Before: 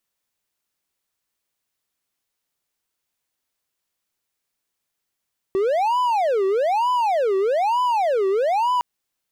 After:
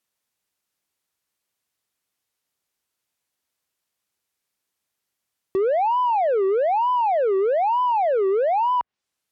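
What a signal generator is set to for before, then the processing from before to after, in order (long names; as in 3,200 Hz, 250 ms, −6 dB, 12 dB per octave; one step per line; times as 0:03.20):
siren wail 382–1,000 Hz 1.1 per second triangle −15 dBFS 3.26 s
treble cut that deepens with the level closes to 1,800 Hz, closed at −20 dBFS
high-pass filter 48 Hz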